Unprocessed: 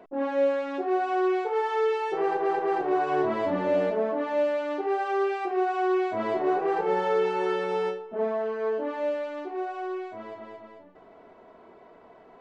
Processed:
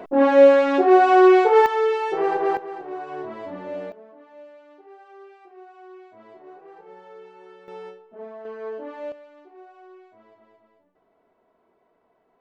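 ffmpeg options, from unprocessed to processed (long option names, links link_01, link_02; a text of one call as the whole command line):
ffmpeg -i in.wav -af "asetnsamples=nb_out_samples=441:pad=0,asendcmd='1.66 volume volume 4dB;2.57 volume volume -8dB;3.92 volume volume -20dB;7.68 volume volume -11dB;8.45 volume volume -5dB;9.12 volume volume -14.5dB',volume=12dB" out.wav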